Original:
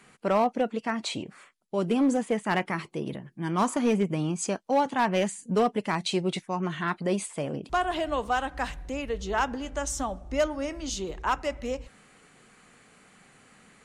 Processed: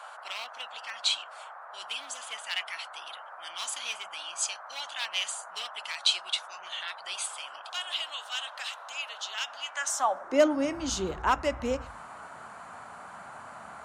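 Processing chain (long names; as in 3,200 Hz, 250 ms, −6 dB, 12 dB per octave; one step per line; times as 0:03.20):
mains-hum notches 50/100/150/200 Hz
high-pass filter sweep 3,200 Hz → 75 Hz, 0:09.60–0:10.89
noise in a band 620–1,500 Hz −47 dBFS
level +1.5 dB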